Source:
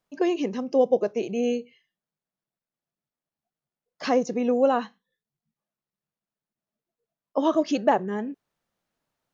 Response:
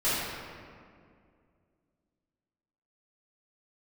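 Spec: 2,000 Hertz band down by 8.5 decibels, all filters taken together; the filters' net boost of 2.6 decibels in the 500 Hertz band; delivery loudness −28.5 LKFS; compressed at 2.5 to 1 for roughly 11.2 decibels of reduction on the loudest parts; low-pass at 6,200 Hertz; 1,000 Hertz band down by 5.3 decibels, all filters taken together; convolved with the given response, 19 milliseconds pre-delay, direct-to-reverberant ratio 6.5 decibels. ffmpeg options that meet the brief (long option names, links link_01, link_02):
-filter_complex "[0:a]lowpass=6200,equalizer=frequency=500:width_type=o:gain=5.5,equalizer=frequency=1000:width_type=o:gain=-9,equalizer=frequency=2000:width_type=o:gain=-8.5,acompressor=threshold=-30dB:ratio=2.5,asplit=2[link_01][link_02];[1:a]atrim=start_sample=2205,adelay=19[link_03];[link_02][link_03]afir=irnorm=-1:irlink=0,volume=-19dB[link_04];[link_01][link_04]amix=inputs=2:normalize=0,volume=3dB"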